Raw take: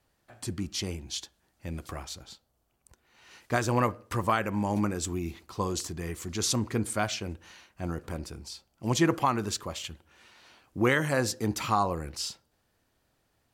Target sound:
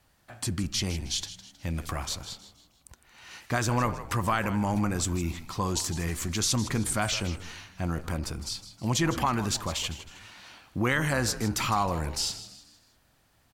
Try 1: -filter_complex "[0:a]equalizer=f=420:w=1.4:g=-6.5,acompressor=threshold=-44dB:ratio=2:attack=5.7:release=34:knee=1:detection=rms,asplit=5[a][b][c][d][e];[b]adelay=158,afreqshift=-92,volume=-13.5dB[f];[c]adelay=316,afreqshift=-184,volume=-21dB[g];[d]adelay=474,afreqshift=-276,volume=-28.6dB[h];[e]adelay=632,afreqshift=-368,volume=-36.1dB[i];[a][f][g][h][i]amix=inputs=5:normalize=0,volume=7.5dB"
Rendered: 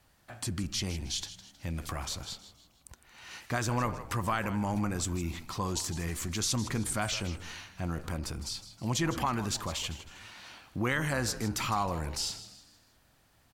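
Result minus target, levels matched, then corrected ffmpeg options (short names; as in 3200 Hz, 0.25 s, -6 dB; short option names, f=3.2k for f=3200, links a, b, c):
compressor: peak gain reduction +4 dB
-filter_complex "[0:a]equalizer=f=420:w=1.4:g=-6.5,acompressor=threshold=-36dB:ratio=2:attack=5.7:release=34:knee=1:detection=rms,asplit=5[a][b][c][d][e];[b]adelay=158,afreqshift=-92,volume=-13.5dB[f];[c]adelay=316,afreqshift=-184,volume=-21dB[g];[d]adelay=474,afreqshift=-276,volume=-28.6dB[h];[e]adelay=632,afreqshift=-368,volume=-36.1dB[i];[a][f][g][h][i]amix=inputs=5:normalize=0,volume=7.5dB"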